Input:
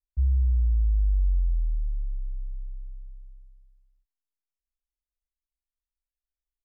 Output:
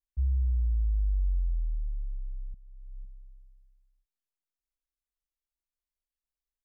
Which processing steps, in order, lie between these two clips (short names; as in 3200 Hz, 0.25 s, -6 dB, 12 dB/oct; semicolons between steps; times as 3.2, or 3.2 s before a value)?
2.54–3.05 negative-ratio compressor -38 dBFS, ratio -0.5; gain -4.5 dB